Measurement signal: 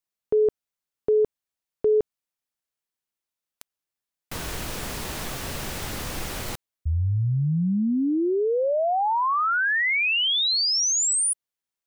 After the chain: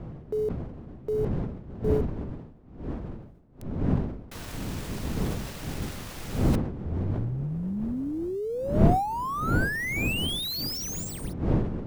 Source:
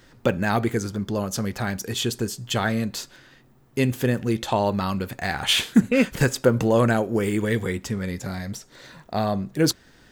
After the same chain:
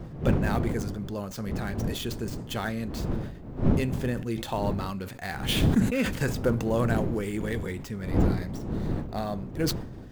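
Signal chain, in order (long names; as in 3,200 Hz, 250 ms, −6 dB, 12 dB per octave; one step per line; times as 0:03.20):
gap after every zero crossing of 0.055 ms
wind on the microphone 220 Hz −23 dBFS
level that may fall only so fast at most 72 dB per second
level −8 dB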